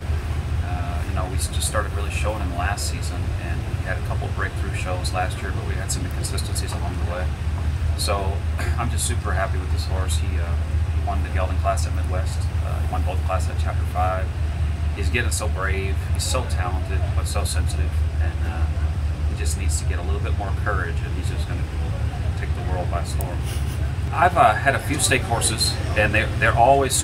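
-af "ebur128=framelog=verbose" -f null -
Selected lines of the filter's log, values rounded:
Integrated loudness:
  I:         -23.1 LUFS
  Threshold: -33.1 LUFS
Loudness range:
  LRA:         5.0 LU
  Threshold: -43.6 LUFS
  LRA low:   -25.4 LUFS
  LRA high:  -20.4 LUFS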